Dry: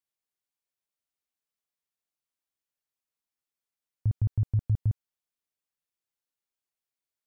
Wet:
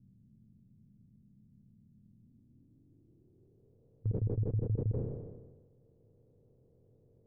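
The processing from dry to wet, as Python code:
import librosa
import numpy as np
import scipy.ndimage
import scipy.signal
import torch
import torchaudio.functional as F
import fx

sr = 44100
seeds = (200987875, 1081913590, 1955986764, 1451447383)

y = fx.bin_compress(x, sr, power=0.4)
y = fx.peak_eq(y, sr, hz=60.0, db=-12.0, octaves=0.92)
y = fx.filter_sweep_lowpass(y, sr, from_hz=210.0, to_hz=470.0, start_s=2.07, end_s=3.87, q=6.1)
y = fx.dynamic_eq(y, sr, hz=620.0, q=1.5, threshold_db=-56.0, ratio=4.0, max_db=-4)
y = fx.sustainer(y, sr, db_per_s=45.0)
y = y * 10.0 ** (-5.0 / 20.0)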